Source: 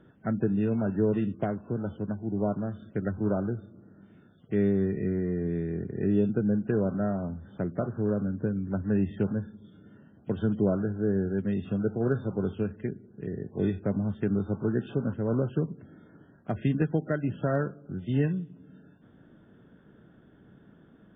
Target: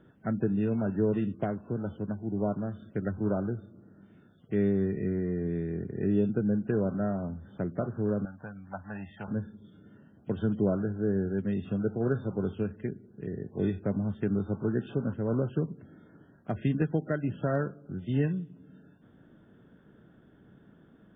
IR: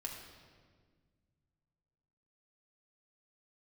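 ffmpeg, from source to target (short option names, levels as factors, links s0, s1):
-filter_complex "[0:a]asettb=1/sr,asplit=3[s0][s1][s2];[s0]atrim=end=8.254[s3];[s1]atrim=start=8.25:end=9.28,asetpts=PTS-STARTPTS,afade=t=in:d=0.004:c=qsin,afade=t=out:st=1.026:d=0.004:c=qsin,lowshelf=f=560:t=q:w=3:g=-11.5[s4];[s2]atrim=start=9.276[s5];[s3][s4]acrossfade=d=0.004:c1=hsin:c2=qsin[s6];[s6][s5]acrossfade=d=0.004:c1=qsin:c2=hsin,volume=0.841"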